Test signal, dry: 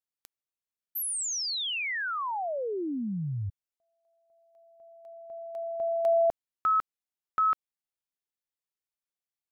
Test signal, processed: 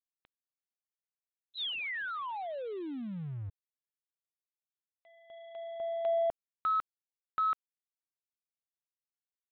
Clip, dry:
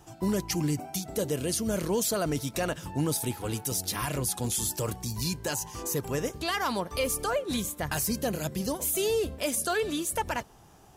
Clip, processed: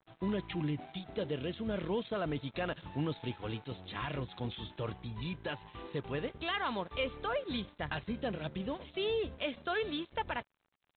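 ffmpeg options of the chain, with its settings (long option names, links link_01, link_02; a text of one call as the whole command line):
ffmpeg -i in.wav -af "adynamicequalizer=threshold=0.00355:dfrequency=2800:dqfactor=2.6:tfrequency=2800:tqfactor=2.6:attack=5:release=100:ratio=0.375:range=2:mode=cutabove:tftype=bell,aresample=8000,aeval=exprs='sgn(val(0))*max(abs(val(0))-0.00335,0)':channel_layout=same,aresample=44100,aemphasis=mode=production:type=75fm,volume=-5dB" out.wav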